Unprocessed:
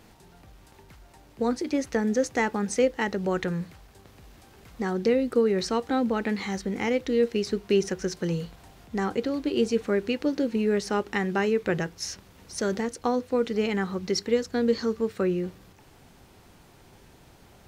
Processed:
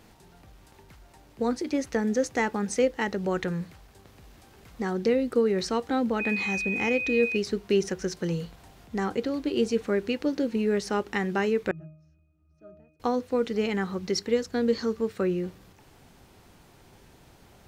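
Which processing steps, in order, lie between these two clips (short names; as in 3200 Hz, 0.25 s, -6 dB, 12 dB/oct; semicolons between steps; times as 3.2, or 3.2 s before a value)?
6.19–7.36 whine 2500 Hz -27 dBFS; 11.71–13 octave resonator D#, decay 0.57 s; gain -1 dB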